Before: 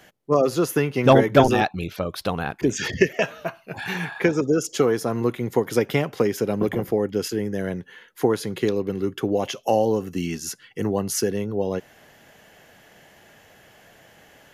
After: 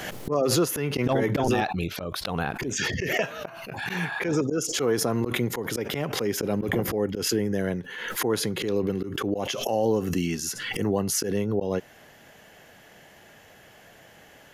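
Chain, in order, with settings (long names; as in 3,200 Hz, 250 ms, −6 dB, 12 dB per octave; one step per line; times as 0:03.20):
volume swells 131 ms
brickwall limiter −14.5 dBFS, peak gain reduction 8.5 dB
background raised ahead of every attack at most 41 dB per second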